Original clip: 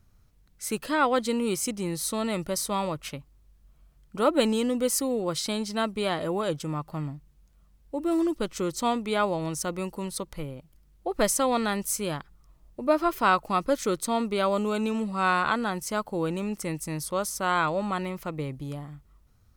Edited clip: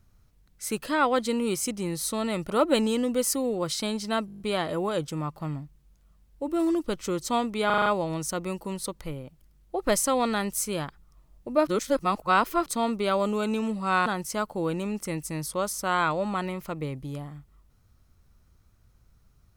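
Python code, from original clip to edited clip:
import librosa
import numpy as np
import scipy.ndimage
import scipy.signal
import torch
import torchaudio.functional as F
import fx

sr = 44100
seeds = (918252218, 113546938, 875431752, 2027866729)

y = fx.edit(x, sr, fx.cut(start_s=2.5, length_s=1.66),
    fx.stutter(start_s=5.92, slice_s=0.02, count=8),
    fx.stutter(start_s=9.18, slice_s=0.04, count=6),
    fx.reverse_span(start_s=12.99, length_s=0.99),
    fx.cut(start_s=15.38, length_s=0.25), tone=tone)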